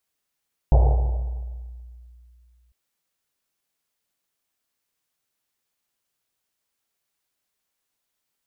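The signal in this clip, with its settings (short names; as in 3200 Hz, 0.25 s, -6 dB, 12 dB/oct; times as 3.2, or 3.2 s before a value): Risset drum length 2.00 s, pitch 60 Hz, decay 2.57 s, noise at 610 Hz, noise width 470 Hz, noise 15%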